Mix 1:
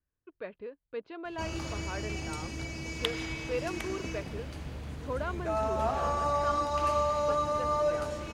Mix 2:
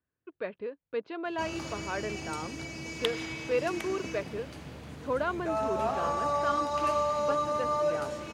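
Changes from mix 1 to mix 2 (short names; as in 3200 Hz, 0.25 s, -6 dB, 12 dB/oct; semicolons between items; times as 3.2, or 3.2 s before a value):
speech +5.0 dB; master: add HPF 120 Hz 12 dB/oct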